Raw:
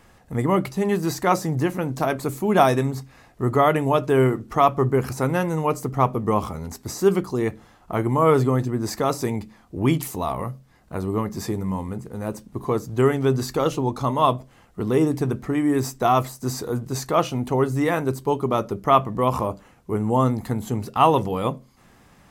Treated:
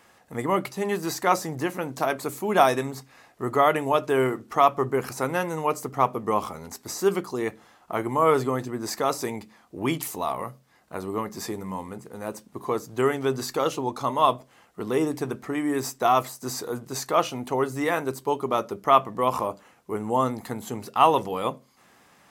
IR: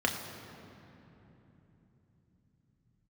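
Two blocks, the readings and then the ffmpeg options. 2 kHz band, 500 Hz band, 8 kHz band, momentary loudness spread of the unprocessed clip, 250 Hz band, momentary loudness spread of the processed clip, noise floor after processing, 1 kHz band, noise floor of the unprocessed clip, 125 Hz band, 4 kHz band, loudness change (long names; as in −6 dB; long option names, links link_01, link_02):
−0.5 dB, −3.0 dB, 0.0 dB, 12 LU, −6.5 dB, 14 LU, −59 dBFS, −1.0 dB, −54 dBFS, −11.5 dB, 0.0 dB, −3.0 dB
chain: -af "highpass=frequency=480:poles=1"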